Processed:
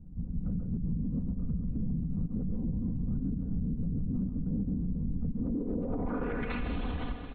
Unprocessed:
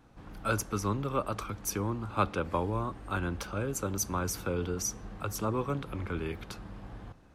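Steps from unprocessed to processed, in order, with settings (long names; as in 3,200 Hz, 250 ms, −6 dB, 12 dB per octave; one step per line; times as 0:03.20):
lower of the sound and its delayed copy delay 7.6 ms
random phases in short frames
dynamic equaliser 230 Hz, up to +6 dB, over −47 dBFS, Q 0.7
linear-phase brick-wall low-pass 4,400 Hz
low-shelf EQ 88 Hz +12 dB
comb filter 4.1 ms, depth 64%
convolution reverb RT60 2.6 s, pre-delay 115 ms, DRR 14 dB
low-pass filter sweep 160 Hz → 3,300 Hz, 0:05.26–0:06.70
downward compressor 12 to 1, threshold −30 dBFS, peak gain reduction 16.5 dB
far-end echo of a speakerphone 130 ms, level −10 dB
brickwall limiter −33.5 dBFS, peak gain reduction 11 dB
level +8.5 dB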